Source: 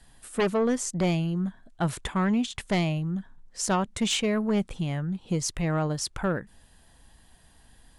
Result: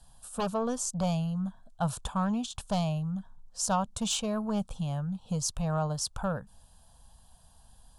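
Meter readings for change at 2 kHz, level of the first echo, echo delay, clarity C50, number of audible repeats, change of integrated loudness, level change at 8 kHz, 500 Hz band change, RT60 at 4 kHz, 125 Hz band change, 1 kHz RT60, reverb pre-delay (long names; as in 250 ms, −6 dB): −10.5 dB, no echo audible, no echo audible, no reverb audible, no echo audible, −4.0 dB, −1.0 dB, −6.0 dB, no reverb audible, −3.0 dB, no reverb audible, no reverb audible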